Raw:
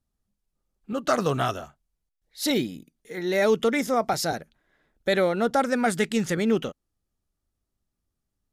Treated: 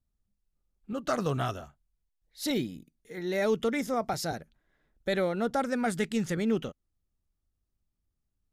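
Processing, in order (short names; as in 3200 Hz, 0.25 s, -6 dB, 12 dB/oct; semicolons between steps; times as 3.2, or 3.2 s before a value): low shelf 150 Hz +9 dB; gain -7 dB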